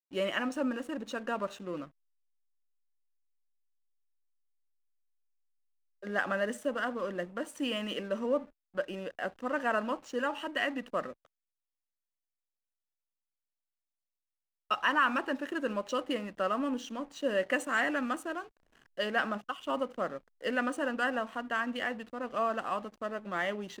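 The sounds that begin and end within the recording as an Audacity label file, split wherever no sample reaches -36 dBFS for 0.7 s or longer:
6.040000	11.100000	sound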